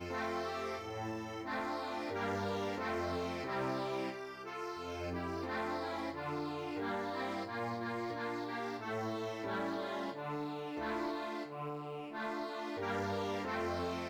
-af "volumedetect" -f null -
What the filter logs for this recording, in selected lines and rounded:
mean_volume: -39.1 dB
max_volume: -29.0 dB